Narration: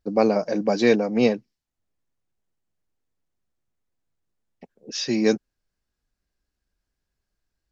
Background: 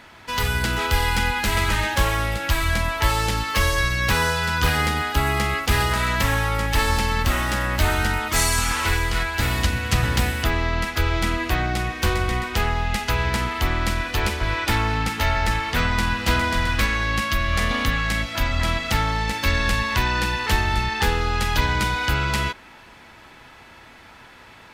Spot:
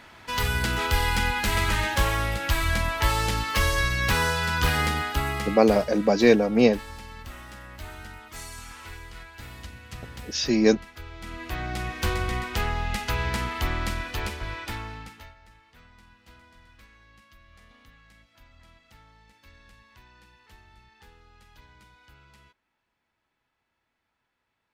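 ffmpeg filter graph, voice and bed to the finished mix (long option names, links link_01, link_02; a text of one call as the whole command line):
ffmpeg -i stem1.wav -i stem2.wav -filter_complex "[0:a]adelay=5400,volume=1dB[link_01];[1:a]volume=12dB,afade=type=out:start_time=4.9:duration=0.99:silence=0.141254,afade=type=in:start_time=11.18:duration=0.79:silence=0.177828,afade=type=out:start_time=13.69:duration=1.66:silence=0.0398107[link_02];[link_01][link_02]amix=inputs=2:normalize=0" out.wav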